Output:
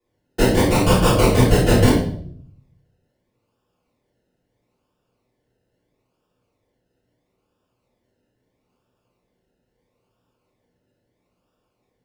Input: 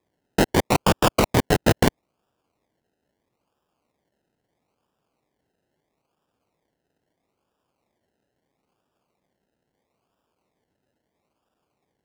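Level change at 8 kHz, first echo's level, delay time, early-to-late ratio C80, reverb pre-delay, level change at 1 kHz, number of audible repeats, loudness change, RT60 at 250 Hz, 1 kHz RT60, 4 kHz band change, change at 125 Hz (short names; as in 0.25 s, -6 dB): +3.0 dB, none, none, 7.5 dB, 3 ms, +1.0 dB, none, +4.5 dB, 0.85 s, 0.55 s, +2.5 dB, +8.0 dB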